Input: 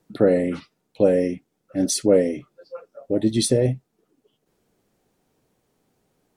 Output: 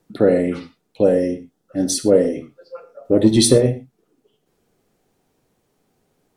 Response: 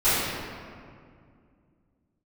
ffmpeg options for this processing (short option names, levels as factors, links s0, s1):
-filter_complex "[0:a]asettb=1/sr,asplit=3[s0][s1][s2];[s0]atrim=end=1.054[s3];[s1]atrim=start=1.05:end=2.36,asetpts=PTS-STARTPTS,afade=t=in:d=0.004:c=qsin,afade=t=out:st=1.306:d=0.004:c=qsin,equalizer=f=2300:w=6.5:g=-12.5[s4];[s2]atrim=start=2.356[s5];[s3][s4]acrossfade=d=0.004:c1=hsin:c2=qsin[s6];[s6][s5]acrossfade=d=0.004:c1=qsin:c2=hsin,asettb=1/sr,asplit=3[s7][s8][s9];[s7]atrim=end=3.054[s10];[s8]atrim=start=3.05:end=3.58,asetpts=PTS-STARTPTS,afade=t=in:d=0.004:c=qsin,afade=t=out:st=0.526:d=0.004:c=qsin,acontrast=34[s11];[s9]atrim=start=3.576[s12];[s10][s11]acrossfade=d=0.004:c1=hsin:c2=qsin[s13];[s13][s12]acrossfade=d=0.004:c1=qsin:c2=hsin,asplit=2[s14][s15];[1:a]atrim=start_sample=2205,afade=t=out:st=0.17:d=0.01,atrim=end_sample=7938[s16];[s15][s16]afir=irnorm=-1:irlink=0,volume=0.0631[s17];[s14][s17]amix=inputs=2:normalize=0,volume=1.19"